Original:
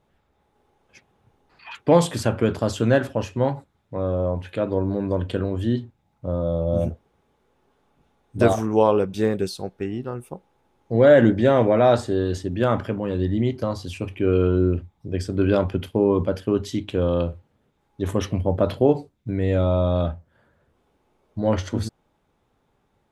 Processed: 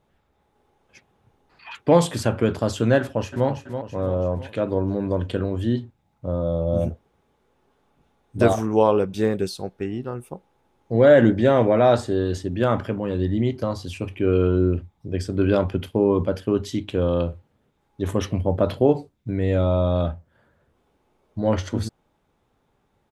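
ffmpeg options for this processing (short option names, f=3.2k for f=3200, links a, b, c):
-filter_complex "[0:a]asplit=2[a][b];[b]afade=t=in:st=2.99:d=0.01,afade=t=out:st=3.48:d=0.01,aecho=0:1:330|660|990|1320|1650|1980|2310:0.375837|0.206711|0.113691|0.0625299|0.0343915|0.0189153|0.0104034[c];[a][c]amix=inputs=2:normalize=0"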